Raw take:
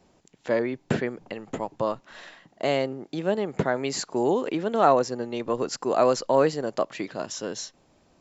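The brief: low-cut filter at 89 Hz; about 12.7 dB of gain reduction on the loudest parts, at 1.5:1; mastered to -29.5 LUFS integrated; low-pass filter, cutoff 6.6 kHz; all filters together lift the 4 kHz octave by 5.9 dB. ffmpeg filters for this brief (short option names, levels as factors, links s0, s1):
-af "highpass=89,lowpass=6600,equalizer=f=4000:t=o:g=8.5,acompressor=threshold=0.00282:ratio=1.5,volume=2.37"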